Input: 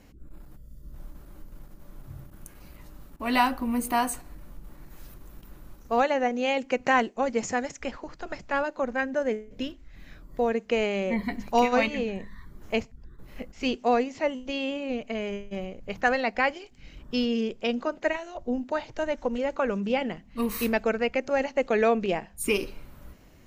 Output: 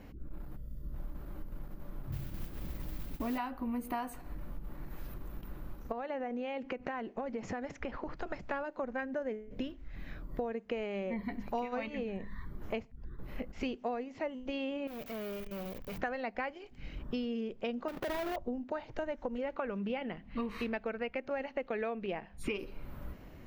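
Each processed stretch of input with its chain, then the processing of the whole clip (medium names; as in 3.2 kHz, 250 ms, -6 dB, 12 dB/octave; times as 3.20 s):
2.12–3.38 s: tilt shelf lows +6.5 dB, about 760 Hz + modulation noise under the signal 11 dB
5.92–8.17 s: distance through air 100 m + compression 3:1, threshold -35 dBFS
14.87–15.98 s: zero-crossing glitches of -28.5 dBFS + treble shelf 3 kHz +11 dB + valve stage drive 41 dB, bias 0.55
17.88–18.36 s: square wave that keeps the level + waveshaping leveller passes 3 + compression 12:1, threshold -29 dBFS
19.42–22.59 s: low-pass 3.1 kHz + treble shelf 2.4 kHz +11 dB
whole clip: peaking EQ 7.7 kHz -13.5 dB 1.8 oct; compression 6:1, threshold -38 dBFS; trim +3.5 dB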